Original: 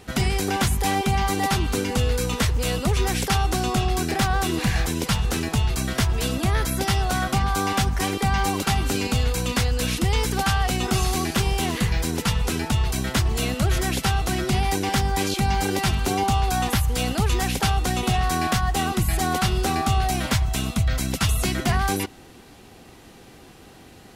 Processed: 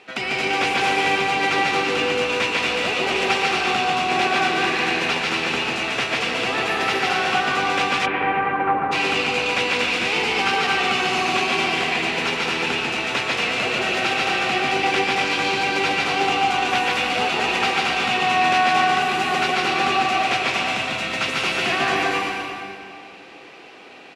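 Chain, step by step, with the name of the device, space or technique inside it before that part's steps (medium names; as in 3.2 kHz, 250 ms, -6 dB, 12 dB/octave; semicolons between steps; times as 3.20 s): station announcement (band-pass 410–4100 Hz; peaking EQ 2.5 kHz +9.5 dB 0.38 oct; loudspeakers at several distances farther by 50 m -2 dB, 81 m -4 dB; reverberation RT60 2.5 s, pre-delay 107 ms, DRR 0 dB); 8.05–8.91 s: low-pass 2.7 kHz -> 1.4 kHz 24 dB/octave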